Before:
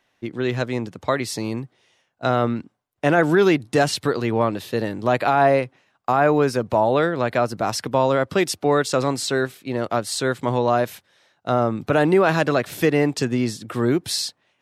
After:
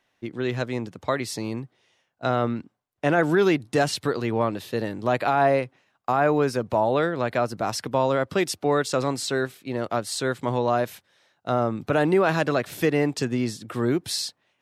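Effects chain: 1.36–3.19 high shelf 10000 Hz -5 dB; gain -3.5 dB

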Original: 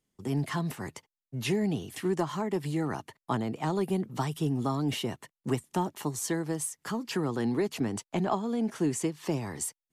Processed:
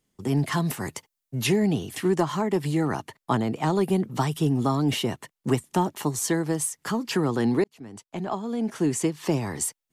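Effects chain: 0.52–1.47 high shelf 6300 Hz +7 dB; 7.64–9.15 fade in; gain +6 dB

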